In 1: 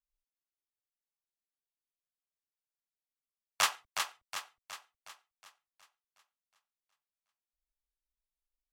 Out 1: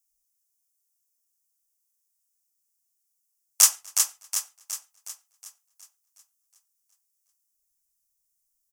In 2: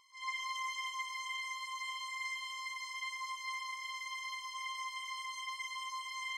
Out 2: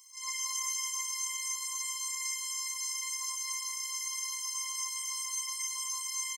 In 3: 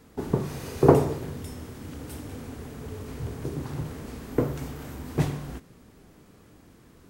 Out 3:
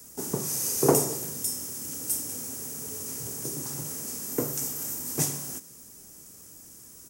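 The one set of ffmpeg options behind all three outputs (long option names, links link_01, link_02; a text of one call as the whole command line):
ffmpeg -i in.wav -filter_complex "[0:a]equalizer=frequency=5100:width_type=o:width=1.2:gain=9.5,asplit=2[link_01][link_02];[link_02]adelay=244.9,volume=-26dB,highshelf=frequency=4000:gain=-5.51[link_03];[link_01][link_03]amix=inputs=2:normalize=0,aeval=exprs='0.944*(cos(1*acos(clip(val(0)/0.944,-1,1)))-cos(1*PI/2))+0.0299*(cos(4*acos(clip(val(0)/0.944,-1,1)))-cos(4*PI/2))':channel_layout=same,acrossover=split=120|1200[link_04][link_05][link_06];[link_04]acompressor=threshold=-59dB:ratio=6[link_07];[link_06]aexciter=amount=9:drive=7.1:freq=6000[link_08];[link_07][link_05][link_08]amix=inputs=3:normalize=0,volume=-4.5dB" out.wav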